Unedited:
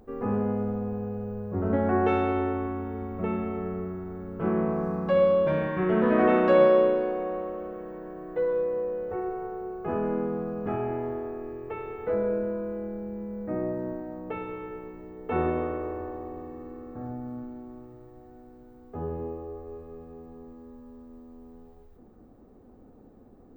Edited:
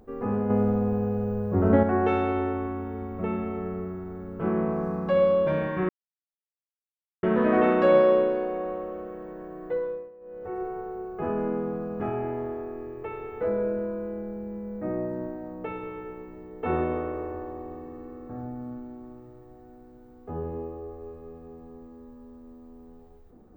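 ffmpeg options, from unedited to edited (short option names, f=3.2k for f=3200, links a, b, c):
-filter_complex "[0:a]asplit=6[a][b][c][d][e][f];[a]atrim=end=0.502[g];[b]atrim=start=0.498:end=1.832,asetpts=PTS-STARTPTS,volume=6dB[h];[c]atrim=start=1.828:end=5.89,asetpts=PTS-STARTPTS,afade=t=out:st=4.058:d=0.004:c=hsin,apad=pad_dur=1.34[i];[d]atrim=start=5.89:end=8.77,asetpts=PTS-STARTPTS,afade=t=in:d=0.004:c=hsin,afade=t=out:st=2.44:d=0.44:silence=0.105925[j];[e]atrim=start=8.77:end=8.86,asetpts=PTS-STARTPTS,volume=-19.5dB[k];[f]atrim=start=8.86,asetpts=PTS-STARTPTS,afade=t=in:d=0.44:silence=0.105925[l];[g][h]acrossfade=d=0.004:c1=hsin:c2=hsin[m];[i][j][k][l]concat=n=4:v=0:a=1[n];[m][n]acrossfade=d=0.004:c1=hsin:c2=hsin"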